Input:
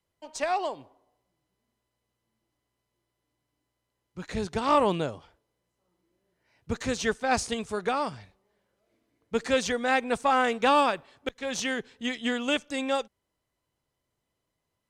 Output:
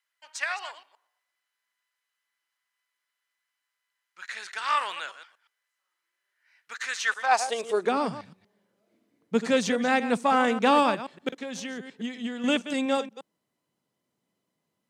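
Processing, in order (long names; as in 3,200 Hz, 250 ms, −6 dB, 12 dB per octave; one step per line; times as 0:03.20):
delay that plays each chunk backwards 119 ms, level −12 dB
0:11.39–0:12.44: downward compressor 6 to 1, threshold −35 dBFS, peak gain reduction 11 dB
high-pass filter sweep 1,600 Hz → 190 Hz, 0:07.01–0:08.09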